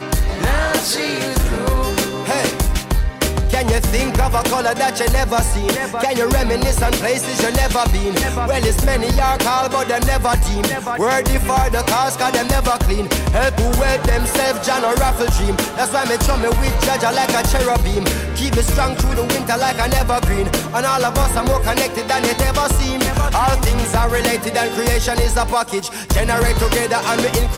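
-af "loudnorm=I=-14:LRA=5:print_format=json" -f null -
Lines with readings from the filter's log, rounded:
"input_i" : "-17.3",
"input_tp" : "-7.5",
"input_lra" : "0.8",
"input_thresh" : "-27.3",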